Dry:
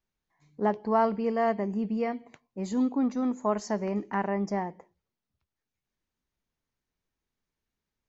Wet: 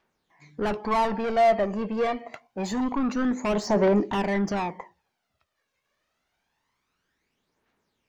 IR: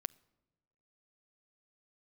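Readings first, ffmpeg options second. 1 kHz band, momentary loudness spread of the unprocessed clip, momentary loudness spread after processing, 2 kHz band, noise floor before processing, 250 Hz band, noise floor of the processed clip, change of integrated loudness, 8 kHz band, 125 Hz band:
+4.0 dB, 8 LU, 13 LU, +6.5 dB, under -85 dBFS, +2.0 dB, -79 dBFS, +3.5 dB, no reading, +4.5 dB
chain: -filter_complex "[0:a]asplit=2[s0][s1];[s1]highpass=f=720:p=1,volume=25.1,asoftclip=type=tanh:threshold=0.251[s2];[s0][s2]amix=inputs=2:normalize=0,lowpass=f=2100:p=1,volume=0.501,aphaser=in_gain=1:out_gain=1:delay=1.9:decay=0.55:speed=0.26:type=triangular,volume=0.562"

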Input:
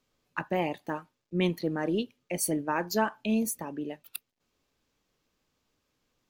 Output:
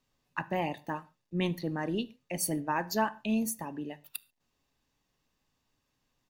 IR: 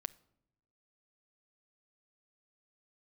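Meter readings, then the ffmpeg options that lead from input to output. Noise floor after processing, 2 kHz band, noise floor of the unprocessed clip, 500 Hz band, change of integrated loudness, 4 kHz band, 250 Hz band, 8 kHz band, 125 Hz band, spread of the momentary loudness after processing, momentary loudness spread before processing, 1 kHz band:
-80 dBFS, -2.0 dB, -81 dBFS, -4.5 dB, -2.5 dB, -1.5 dB, -2.5 dB, -2.0 dB, -1.0 dB, 10 LU, 11 LU, -0.5 dB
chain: -filter_complex "[0:a]aecho=1:1:1.1:0.34[s0];[1:a]atrim=start_sample=2205,afade=t=out:st=0.18:d=0.01,atrim=end_sample=8379,asetrate=40572,aresample=44100[s1];[s0][s1]afir=irnorm=-1:irlink=0"

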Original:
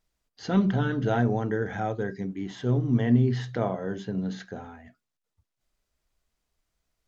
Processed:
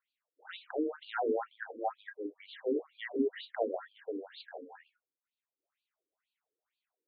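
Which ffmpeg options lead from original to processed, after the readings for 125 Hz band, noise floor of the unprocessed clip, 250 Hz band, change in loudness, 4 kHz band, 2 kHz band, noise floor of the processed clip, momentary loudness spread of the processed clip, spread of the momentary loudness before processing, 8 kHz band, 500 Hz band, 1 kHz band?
under -40 dB, -84 dBFS, -13.0 dB, -10.0 dB, -5.0 dB, -7.5 dB, under -85 dBFS, 15 LU, 14 LU, no reading, -5.0 dB, -6.0 dB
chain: -af "afreqshift=19,afftfilt=real='re*between(b*sr/1024,360*pow(3400/360,0.5+0.5*sin(2*PI*2.1*pts/sr))/1.41,360*pow(3400/360,0.5+0.5*sin(2*PI*2.1*pts/sr))*1.41)':imag='im*between(b*sr/1024,360*pow(3400/360,0.5+0.5*sin(2*PI*2.1*pts/sr))/1.41,360*pow(3400/360,0.5+0.5*sin(2*PI*2.1*pts/sr))*1.41)':win_size=1024:overlap=0.75"

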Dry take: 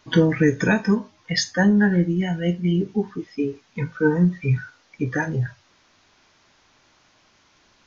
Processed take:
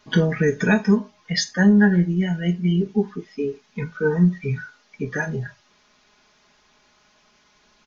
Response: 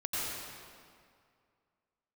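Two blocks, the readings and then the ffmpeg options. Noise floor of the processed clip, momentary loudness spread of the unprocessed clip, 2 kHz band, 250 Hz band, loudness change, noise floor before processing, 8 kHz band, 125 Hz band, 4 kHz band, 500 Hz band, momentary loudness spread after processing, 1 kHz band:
-60 dBFS, 10 LU, 0.0 dB, +1.0 dB, +0.5 dB, -60 dBFS, no reading, 0.0 dB, 0.0 dB, +0.5 dB, 15 LU, -1.5 dB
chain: -af "aecho=1:1:4.8:0.69,volume=0.794"

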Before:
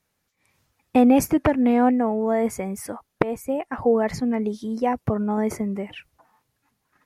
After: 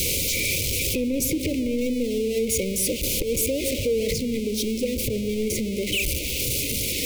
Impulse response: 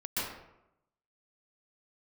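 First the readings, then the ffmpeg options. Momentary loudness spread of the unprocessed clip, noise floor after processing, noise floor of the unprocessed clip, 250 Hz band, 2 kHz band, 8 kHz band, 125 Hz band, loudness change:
13 LU, -28 dBFS, -75 dBFS, -5.0 dB, +5.5 dB, +14.5 dB, +2.0 dB, -1.5 dB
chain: -filter_complex "[0:a]aeval=exprs='val(0)+0.5*0.075*sgn(val(0))':c=same,bandreject=f=60:t=h:w=6,bandreject=f=120:t=h:w=6,aeval=exprs='0.531*(cos(1*acos(clip(val(0)/0.531,-1,1)))-cos(1*PI/2))+0.0376*(cos(3*acos(clip(val(0)/0.531,-1,1)))-cos(3*PI/2))+0.0473*(cos(5*acos(clip(val(0)/0.531,-1,1)))-cos(5*PI/2))':c=same,asuperstop=centerf=1100:order=20:qfactor=0.68,acompressor=threshold=0.158:ratio=6,asplit=2[s0][s1];[s1]lowpass=2000[s2];[1:a]atrim=start_sample=2205[s3];[s2][s3]afir=irnorm=-1:irlink=0,volume=0.2[s4];[s0][s4]amix=inputs=2:normalize=0,alimiter=limit=0.126:level=0:latency=1:release=192,aeval=exprs='val(0)+0.00501*(sin(2*PI*60*n/s)+sin(2*PI*2*60*n/s)/2+sin(2*PI*3*60*n/s)/3+sin(2*PI*4*60*n/s)/4+sin(2*PI*5*60*n/s)/5)':c=same,equalizer=f=190:t=o:w=1.3:g=-9,volume=1.78"

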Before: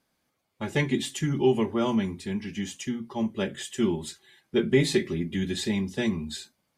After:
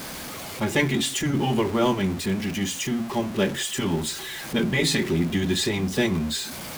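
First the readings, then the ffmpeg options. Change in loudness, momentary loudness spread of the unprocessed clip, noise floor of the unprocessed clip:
+3.0 dB, 10 LU, -76 dBFS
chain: -af "aeval=exprs='val(0)+0.5*0.0188*sgn(val(0))':c=same,afftfilt=real='re*lt(hypot(re,im),0.562)':imag='im*lt(hypot(re,im),0.562)':win_size=1024:overlap=0.75,volume=1.78"

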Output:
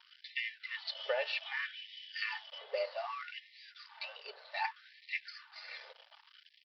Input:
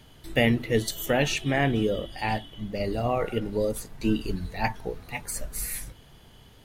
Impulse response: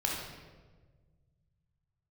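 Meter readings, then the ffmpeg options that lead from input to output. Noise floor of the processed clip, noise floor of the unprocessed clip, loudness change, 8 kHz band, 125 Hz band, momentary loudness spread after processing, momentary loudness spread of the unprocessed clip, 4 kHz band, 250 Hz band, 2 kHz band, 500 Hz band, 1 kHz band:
-66 dBFS, -53 dBFS, -12.0 dB, under -35 dB, under -40 dB, 17 LU, 10 LU, -6.5 dB, under -40 dB, -7.0 dB, -14.0 dB, -11.5 dB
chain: -af "equalizer=f=100:w=0.89:g=-4.5,aecho=1:1:3.4:0.68,acompressor=threshold=0.0224:ratio=5,aresample=11025,aeval=exprs='sgn(val(0))*max(abs(val(0))-0.00316,0)':c=same,aresample=44100,afftfilt=real='re*gte(b*sr/1024,400*pow(1800/400,0.5+0.5*sin(2*PI*0.64*pts/sr)))':imag='im*gte(b*sr/1024,400*pow(1800/400,0.5+0.5*sin(2*PI*0.64*pts/sr)))':win_size=1024:overlap=0.75,volume=1.41"

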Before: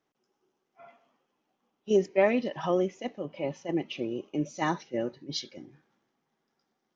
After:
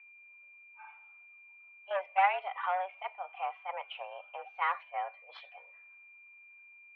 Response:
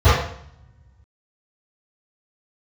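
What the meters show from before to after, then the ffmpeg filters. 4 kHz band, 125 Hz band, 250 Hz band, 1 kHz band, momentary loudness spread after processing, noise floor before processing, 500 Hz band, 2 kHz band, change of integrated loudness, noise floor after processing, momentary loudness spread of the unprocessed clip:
-8.5 dB, under -40 dB, under -40 dB, +5.0 dB, 24 LU, -81 dBFS, -12.5 dB, +1.0 dB, -4.5 dB, -57 dBFS, 13 LU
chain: -af "aeval=exprs='0.299*(cos(1*acos(clip(val(0)/0.299,-1,1)))-cos(1*PI/2))+0.0668*(cos(2*acos(clip(val(0)/0.299,-1,1)))-cos(2*PI/2))+0.0188*(cos(8*acos(clip(val(0)/0.299,-1,1)))-cos(8*PI/2))':c=same,aeval=exprs='val(0)+0.00224*sin(2*PI*2200*n/s)':c=same,highpass=f=550:t=q:w=0.5412,highpass=f=550:t=q:w=1.307,lowpass=f=2600:t=q:w=0.5176,lowpass=f=2600:t=q:w=0.7071,lowpass=f=2600:t=q:w=1.932,afreqshift=190"

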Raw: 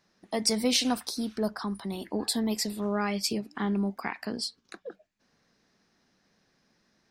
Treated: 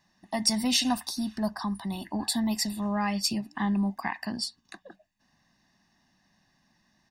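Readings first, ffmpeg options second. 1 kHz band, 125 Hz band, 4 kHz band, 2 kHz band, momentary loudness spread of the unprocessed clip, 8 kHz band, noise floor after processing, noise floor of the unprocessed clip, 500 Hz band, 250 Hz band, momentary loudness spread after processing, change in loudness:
+2.5 dB, +2.0 dB, +1.0 dB, +1.0 dB, 11 LU, +1.0 dB, -70 dBFS, -71 dBFS, -6.0 dB, +1.5 dB, 9 LU, +1.0 dB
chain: -af "aeval=exprs='0.299*(cos(1*acos(clip(val(0)/0.299,-1,1)))-cos(1*PI/2))+0.00531*(cos(5*acos(clip(val(0)/0.299,-1,1)))-cos(5*PI/2))':c=same,aecho=1:1:1.1:0.91,volume=0.794"

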